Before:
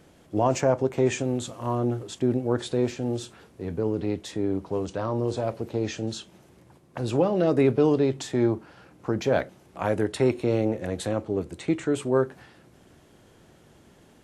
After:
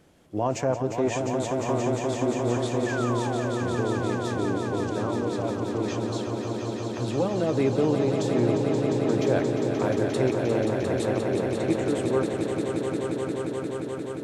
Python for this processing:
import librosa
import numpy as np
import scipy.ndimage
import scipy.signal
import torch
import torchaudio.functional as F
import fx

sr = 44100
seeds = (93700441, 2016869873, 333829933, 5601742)

y = fx.spec_paint(x, sr, seeds[0], shape='fall', start_s=2.86, length_s=0.66, low_hz=530.0, high_hz=1800.0, level_db=-31.0)
y = fx.echo_swell(y, sr, ms=176, loudest=5, wet_db=-7.0)
y = y * librosa.db_to_amplitude(-3.5)